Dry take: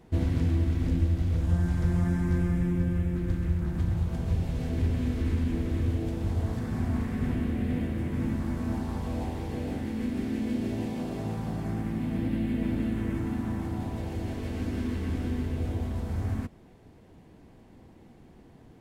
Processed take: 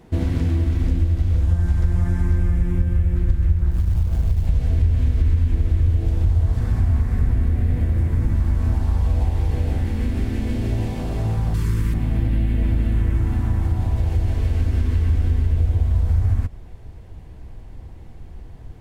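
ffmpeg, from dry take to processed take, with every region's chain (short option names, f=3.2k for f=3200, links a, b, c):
-filter_complex "[0:a]asettb=1/sr,asplit=3[a][b][c];[a]atrim=end=3.714[d];[b]atrim=start=3.71:end=4.47,asetpts=PTS-STARTPTS,afade=t=in:d=0.004:c=qsin,afade=t=out:st=0.756:d=0.004:c=qsin,acompressor=threshold=-25dB:ratio=20:attack=3.2:release=140:knee=1:detection=peak,acrusher=bits=6:mode=log:mix=0:aa=0.000001,tremolo=f=120:d=0.519[e];[c]atrim=start=4.466[f];[d][e]acrossfade=d=0.004:c1=hsin:c2=qsin[g];[g][f]acrossfade=d=0.004:c1=qsin:c2=hsin,asettb=1/sr,asplit=3[h][i][j];[h]atrim=end=7.004[k];[i]atrim=start=7:end=8.35,asetpts=PTS-STARTPTS,afade=t=in:d=0.004:c=qsin,afade=t=out:st=1.346:d=0.004:c=qsin,equalizer=f=2.9k:w=2:g=-5.5,aeval=exprs='sgn(val(0))*max(abs(val(0))-0.00133,0)':c=same[l];[j]atrim=start=8.346[m];[k][l]acrossfade=d=0.004:c1=hsin:c2=qsin[n];[n][m]acrossfade=d=0.004:c1=qsin:c2=hsin,asettb=1/sr,asplit=3[o][p][q];[o]atrim=end=11.544[r];[p]atrim=start=11.54:end=11.94,asetpts=PTS-STARTPTS,afade=t=in:d=0.004:c=qsin,afade=t=out:st=0.396:d=0.004:c=qsin,asuperstop=centerf=690:order=20:qfactor=2,highshelf=f=2.8k:g=11[s];[q]atrim=start=11.936[t];[r][s]acrossfade=d=0.004:c1=hsin:c2=qsin[u];[u][t]acrossfade=d=0.004:c1=qsin:c2=hsin,asubboost=boost=10:cutoff=70,acompressor=threshold=-22dB:ratio=3,volume=6.5dB"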